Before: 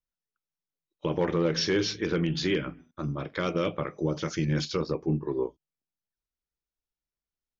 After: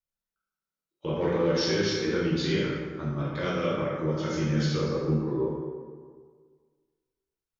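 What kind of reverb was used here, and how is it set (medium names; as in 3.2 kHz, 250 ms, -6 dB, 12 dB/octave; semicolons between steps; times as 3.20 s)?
plate-style reverb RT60 1.7 s, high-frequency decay 0.55×, DRR -6.5 dB; trim -6.5 dB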